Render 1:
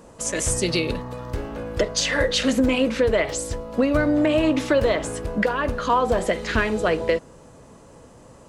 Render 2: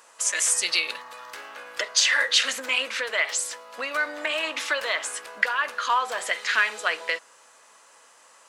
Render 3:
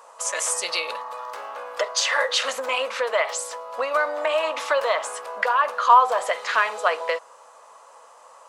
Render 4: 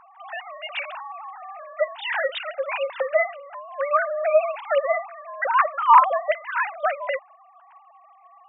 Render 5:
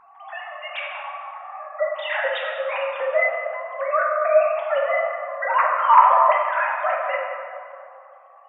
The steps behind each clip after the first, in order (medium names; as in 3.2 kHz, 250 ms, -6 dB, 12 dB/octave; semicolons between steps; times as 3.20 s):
Chebyshev high-pass 1.5 kHz, order 2; trim +4 dB
high-order bell 750 Hz +13 dB; trim -3 dB
formants replaced by sine waves
plate-style reverb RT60 2.4 s, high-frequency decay 0.5×, DRR -2.5 dB; trim -2.5 dB